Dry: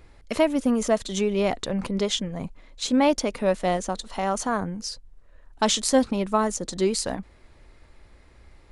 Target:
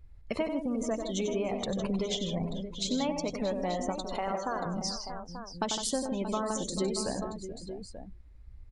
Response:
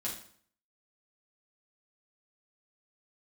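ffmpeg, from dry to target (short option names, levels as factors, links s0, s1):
-filter_complex "[0:a]aeval=exprs='clip(val(0),-1,0.211)':c=same,asettb=1/sr,asplit=3[s0][s1][s2];[s0]atrim=end=4.164[s3];[s1]atrim=start=4.16:end=4.66,asetpts=PTS-STARTPTS,afade=t=in:d=0.004:c=qsin,afade=t=out:st=0.496:d=0.004:c=qsin,highpass=320,lowpass=4600[s4];[s2]atrim=start=4.656[s5];[s3][s4]acrossfade=d=0.004:c1=hsin:c2=qsin[s6];[s6][s5]acrossfade=d=0.004:c1=qsin:c2=hsin,acompressor=threshold=0.0316:ratio=5,asplit=2[s7][s8];[s8]aecho=0:1:94|159|437|629|885:0.473|0.376|0.211|0.299|0.335[s9];[s7][s9]amix=inputs=2:normalize=0,afftdn=nr=20:nf=-42"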